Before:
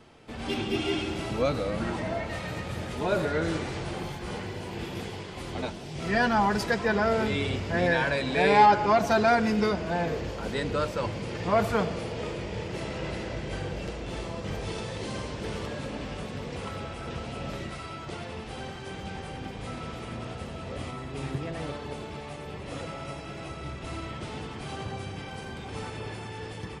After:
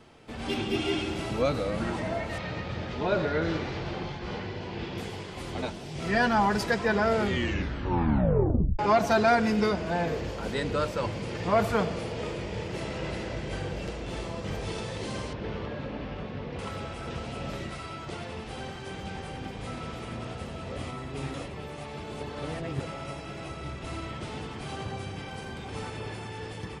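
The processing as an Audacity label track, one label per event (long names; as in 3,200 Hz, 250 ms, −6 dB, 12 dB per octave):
2.380000	4.980000	low-pass filter 5,300 Hz 24 dB per octave
7.160000	7.160000	tape stop 1.63 s
15.330000	16.590000	high-frequency loss of the air 230 metres
21.340000	22.800000	reverse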